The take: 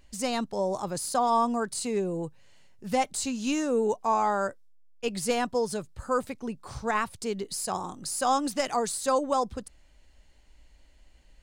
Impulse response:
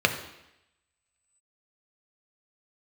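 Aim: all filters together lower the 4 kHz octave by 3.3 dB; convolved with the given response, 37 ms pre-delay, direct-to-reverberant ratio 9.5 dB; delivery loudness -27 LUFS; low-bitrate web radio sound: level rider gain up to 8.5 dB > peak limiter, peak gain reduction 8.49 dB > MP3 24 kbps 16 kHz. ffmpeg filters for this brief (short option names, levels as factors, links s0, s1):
-filter_complex "[0:a]equalizer=f=4000:t=o:g=-4.5,asplit=2[s0][s1];[1:a]atrim=start_sample=2205,adelay=37[s2];[s1][s2]afir=irnorm=-1:irlink=0,volume=0.0562[s3];[s0][s3]amix=inputs=2:normalize=0,dynaudnorm=m=2.66,alimiter=limit=0.0708:level=0:latency=1,volume=2.24" -ar 16000 -c:a libmp3lame -b:a 24k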